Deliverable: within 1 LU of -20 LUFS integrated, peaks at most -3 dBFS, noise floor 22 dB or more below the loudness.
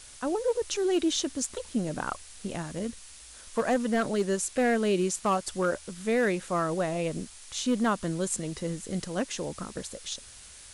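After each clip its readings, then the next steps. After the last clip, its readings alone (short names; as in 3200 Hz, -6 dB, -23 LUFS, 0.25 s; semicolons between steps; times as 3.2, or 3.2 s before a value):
clipped 0.5%; flat tops at -19.0 dBFS; noise floor -49 dBFS; noise floor target -52 dBFS; loudness -29.5 LUFS; peak -19.0 dBFS; loudness target -20.0 LUFS
-> clip repair -19 dBFS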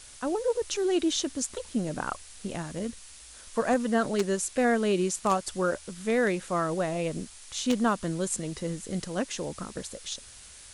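clipped 0.0%; noise floor -49 dBFS; noise floor target -52 dBFS
-> denoiser 6 dB, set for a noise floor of -49 dBFS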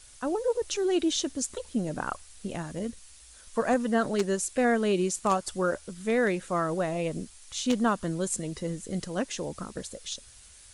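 noise floor -52 dBFS; loudness -29.5 LUFS; peak -10.0 dBFS; loudness target -20.0 LUFS
-> gain +9.5 dB; limiter -3 dBFS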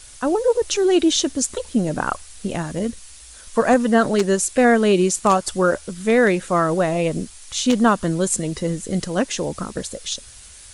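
loudness -20.0 LUFS; peak -3.0 dBFS; noise floor -43 dBFS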